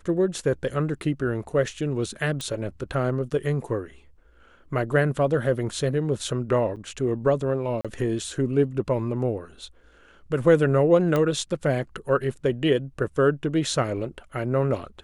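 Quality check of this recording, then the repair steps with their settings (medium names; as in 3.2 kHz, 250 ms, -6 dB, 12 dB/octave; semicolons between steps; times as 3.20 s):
2.41 s: pop -17 dBFS
6.76–6.77 s: dropout 7.2 ms
7.81–7.85 s: dropout 36 ms
11.16 s: pop -12 dBFS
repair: de-click; interpolate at 6.76 s, 7.2 ms; interpolate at 7.81 s, 36 ms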